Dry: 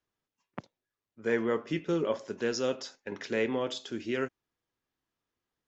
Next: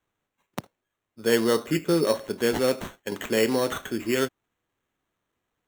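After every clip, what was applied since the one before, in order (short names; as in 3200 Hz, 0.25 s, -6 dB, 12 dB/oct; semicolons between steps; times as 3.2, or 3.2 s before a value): sample-and-hold 9×; gain +7 dB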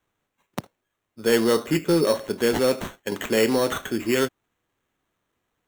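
soft clip -13.5 dBFS, distortion -21 dB; gain +3.5 dB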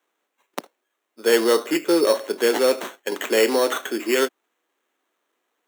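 HPF 300 Hz 24 dB/oct; gain +3 dB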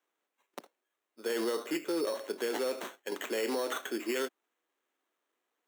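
limiter -14 dBFS, peak gain reduction 10.5 dB; gain -9 dB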